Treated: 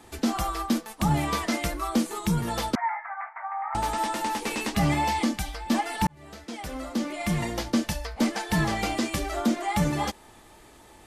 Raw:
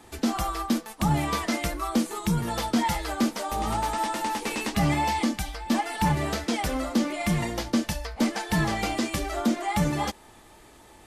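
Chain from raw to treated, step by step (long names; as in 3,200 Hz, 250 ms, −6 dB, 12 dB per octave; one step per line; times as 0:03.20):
0:02.75–0:03.75: Chebyshev band-pass filter 710–2,200 Hz, order 5
0:06.07–0:07.55: fade in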